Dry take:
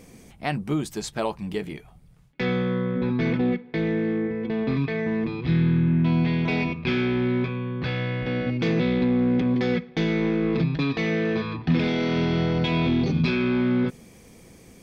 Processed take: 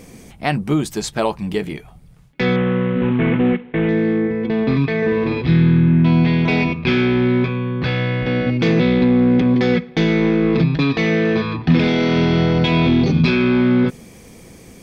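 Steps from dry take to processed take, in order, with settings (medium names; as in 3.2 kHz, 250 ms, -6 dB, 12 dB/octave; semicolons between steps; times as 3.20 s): 2.56–3.89 s: CVSD coder 16 kbps; 4.97–5.42 s: flutter echo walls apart 9 m, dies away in 1.1 s; trim +7.5 dB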